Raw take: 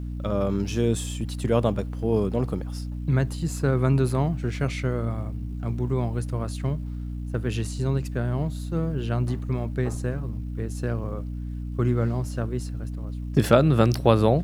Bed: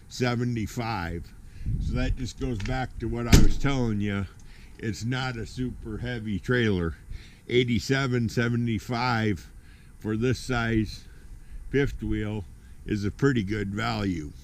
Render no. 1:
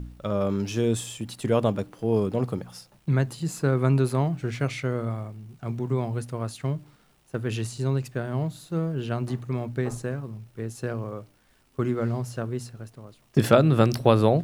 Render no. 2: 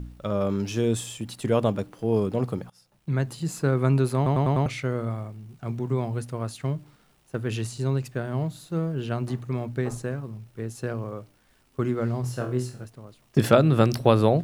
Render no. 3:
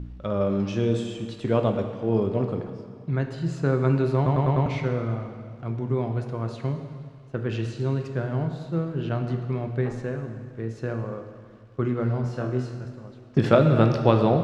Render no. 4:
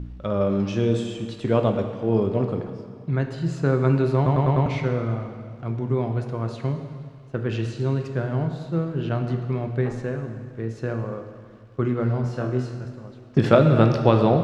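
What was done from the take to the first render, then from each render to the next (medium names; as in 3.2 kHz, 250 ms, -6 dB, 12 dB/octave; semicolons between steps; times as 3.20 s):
de-hum 60 Hz, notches 5
2.70–3.35 s: fade in, from -22 dB; 4.16 s: stutter in place 0.10 s, 5 plays; 12.21–12.85 s: flutter echo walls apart 4.1 m, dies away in 0.32 s
distance through air 150 m; plate-style reverb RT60 2 s, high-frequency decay 0.85×, DRR 5 dB
trim +2 dB; peak limiter -2 dBFS, peak gain reduction 1.5 dB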